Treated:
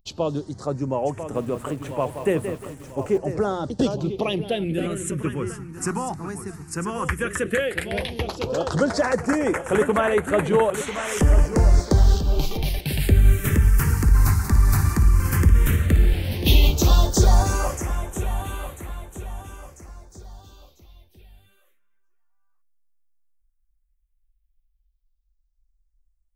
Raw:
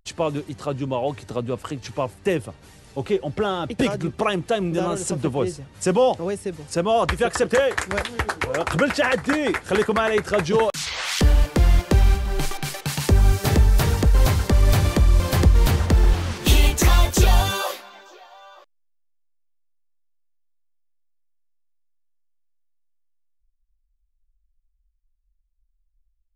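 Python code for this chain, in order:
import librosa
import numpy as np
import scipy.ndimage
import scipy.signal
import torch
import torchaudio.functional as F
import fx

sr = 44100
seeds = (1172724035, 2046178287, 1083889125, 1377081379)

y = fx.high_shelf(x, sr, hz=9600.0, db=4.5)
y = fx.hum_notches(y, sr, base_hz=60, count=3)
y = fx.echo_feedback(y, sr, ms=994, feedback_pct=40, wet_db=-10.5)
y = fx.phaser_stages(y, sr, stages=4, low_hz=540.0, high_hz=5000.0, hz=0.12, feedback_pct=15)
y = fx.echo_crushed(y, sr, ms=176, feedback_pct=35, bits=7, wet_db=-9.0, at=(1.17, 3.18))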